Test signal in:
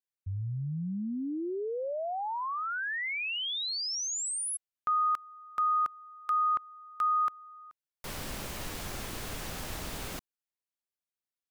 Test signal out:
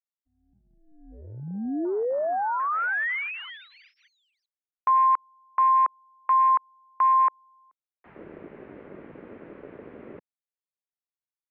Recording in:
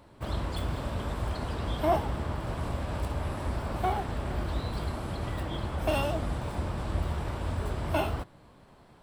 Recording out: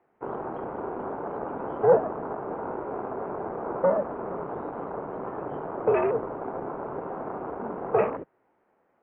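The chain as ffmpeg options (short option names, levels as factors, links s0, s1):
-af "afwtdn=0.0158,highpass=f=450:t=q:w=0.5412,highpass=f=450:t=q:w=1.307,lowpass=f=2400:t=q:w=0.5176,lowpass=f=2400:t=q:w=0.7071,lowpass=f=2400:t=q:w=1.932,afreqshift=-190,volume=2.51"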